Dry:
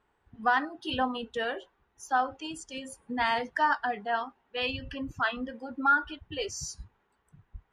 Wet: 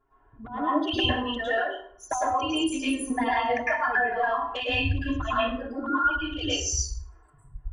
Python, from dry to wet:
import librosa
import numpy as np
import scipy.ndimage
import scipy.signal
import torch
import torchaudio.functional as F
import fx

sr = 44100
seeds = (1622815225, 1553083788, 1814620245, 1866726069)

y = fx.envelope_sharpen(x, sr, power=2.0)
y = fx.env_flanger(y, sr, rest_ms=7.4, full_db=-23.5)
y = fx.over_compress(y, sr, threshold_db=-34.0, ratio=-0.5)
y = y + 0.74 * np.pad(y, (int(2.9 * sr / 1000.0), 0))[:len(y)]
y = fx.rev_plate(y, sr, seeds[0], rt60_s=0.55, hf_ratio=0.7, predelay_ms=95, drr_db=-9.5)
y = fx.band_squash(y, sr, depth_pct=100, at=(2.11, 4.6))